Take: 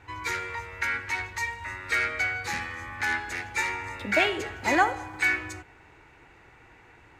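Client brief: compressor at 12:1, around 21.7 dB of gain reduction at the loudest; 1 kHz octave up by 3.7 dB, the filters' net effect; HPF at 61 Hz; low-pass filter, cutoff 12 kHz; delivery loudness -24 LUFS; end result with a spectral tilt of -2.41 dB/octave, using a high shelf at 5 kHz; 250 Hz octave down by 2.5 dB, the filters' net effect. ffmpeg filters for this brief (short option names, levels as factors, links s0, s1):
-af "highpass=61,lowpass=12000,equalizer=f=250:t=o:g=-4,equalizer=f=1000:t=o:g=5,highshelf=f=5000:g=6,acompressor=threshold=0.0158:ratio=12,volume=5.62"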